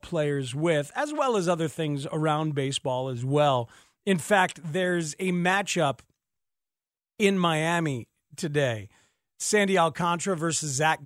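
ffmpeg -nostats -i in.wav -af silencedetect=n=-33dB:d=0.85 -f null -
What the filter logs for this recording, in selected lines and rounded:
silence_start: 5.92
silence_end: 7.20 | silence_duration: 1.28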